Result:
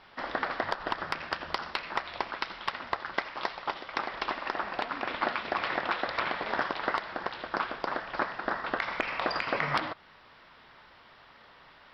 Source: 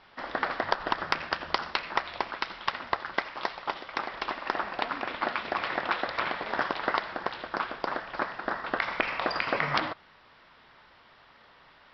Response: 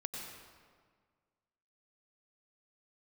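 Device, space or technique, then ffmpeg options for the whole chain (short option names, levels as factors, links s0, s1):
soft clipper into limiter: -af "asoftclip=type=tanh:threshold=0.376,alimiter=limit=0.15:level=0:latency=1:release=332,volume=1.19"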